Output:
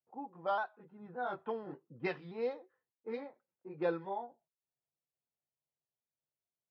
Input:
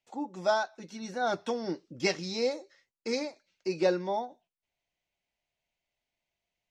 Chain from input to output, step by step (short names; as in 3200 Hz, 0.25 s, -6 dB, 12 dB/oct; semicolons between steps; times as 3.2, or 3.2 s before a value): repeated pitch sweeps -1.5 st, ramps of 0.578 s; low-pass opened by the level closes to 520 Hz, open at -23.5 dBFS; speaker cabinet 130–2800 Hz, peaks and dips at 140 Hz +4 dB, 200 Hz -7 dB, 300 Hz -8 dB, 600 Hz -6 dB, 1000 Hz +4 dB, 2200 Hz -7 dB; gain -4 dB